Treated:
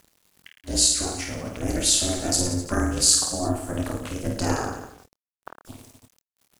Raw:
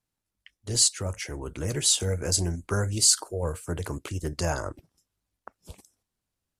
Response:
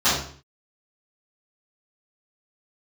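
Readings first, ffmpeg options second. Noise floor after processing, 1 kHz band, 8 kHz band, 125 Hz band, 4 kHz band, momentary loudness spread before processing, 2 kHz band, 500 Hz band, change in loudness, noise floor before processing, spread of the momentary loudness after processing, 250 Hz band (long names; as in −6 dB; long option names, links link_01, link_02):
below −85 dBFS, +6.0 dB, +3.0 dB, −1.0 dB, +3.0 dB, 14 LU, +3.0 dB, +2.0 dB, +3.0 dB, below −85 dBFS, 13 LU, +8.0 dB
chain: -filter_complex "[0:a]aecho=1:1:50|107.5|173.6|249.7|337.1:0.631|0.398|0.251|0.158|0.1,acompressor=mode=upward:threshold=-43dB:ratio=2.5,acrusher=bits=8:mix=0:aa=0.000001,asplit=2[link_01][link_02];[link_02]adelay=26,volume=-8.5dB[link_03];[link_01][link_03]amix=inputs=2:normalize=0,aeval=exprs='val(0)*sin(2*PI*180*n/s)':channel_layout=same,volume=3.5dB"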